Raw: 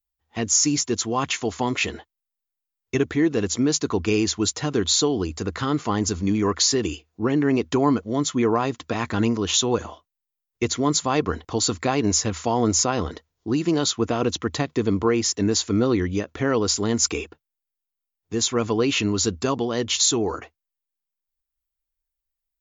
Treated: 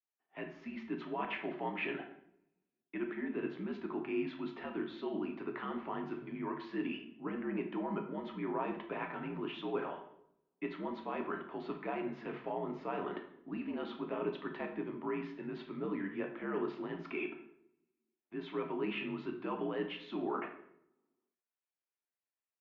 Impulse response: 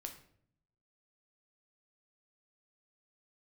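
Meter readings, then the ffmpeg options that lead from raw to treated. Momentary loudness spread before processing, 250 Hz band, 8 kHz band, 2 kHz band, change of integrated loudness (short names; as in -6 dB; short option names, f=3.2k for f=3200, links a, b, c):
8 LU, -16.0 dB, under -40 dB, -12.5 dB, -17.5 dB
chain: -filter_complex "[0:a]areverse,acompressor=threshold=-30dB:ratio=6,areverse[a];[1:a]atrim=start_sample=2205,asetrate=34839,aresample=44100[b];[a][b]afir=irnorm=-1:irlink=0,highpass=f=320:t=q:w=0.5412,highpass=f=320:t=q:w=1.307,lowpass=f=2.8k:t=q:w=0.5176,lowpass=f=2.8k:t=q:w=0.7071,lowpass=f=2.8k:t=q:w=1.932,afreqshift=-66"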